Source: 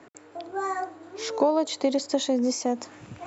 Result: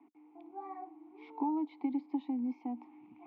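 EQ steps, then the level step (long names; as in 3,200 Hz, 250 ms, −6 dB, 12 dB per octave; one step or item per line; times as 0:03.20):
formant filter u
loudspeaker in its box 110–3,500 Hz, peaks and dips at 240 Hz +6 dB, 740 Hz +7 dB, 1,100 Hz +4 dB
−5.0 dB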